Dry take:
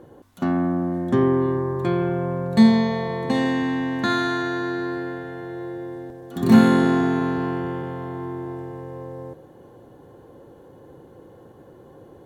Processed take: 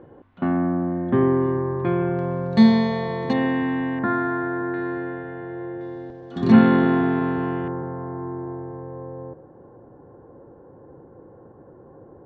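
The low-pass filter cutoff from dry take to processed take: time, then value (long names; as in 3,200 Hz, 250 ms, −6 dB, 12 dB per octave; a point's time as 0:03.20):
low-pass filter 24 dB per octave
2,700 Hz
from 0:02.19 5,500 Hz
from 0:03.33 2,800 Hz
from 0:03.99 1,700 Hz
from 0:04.74 2,600 Hz
from 0:05.81 5,100 Hz
from 0:06.52 3,100 Hz
from 0:07.68 1,500 Hz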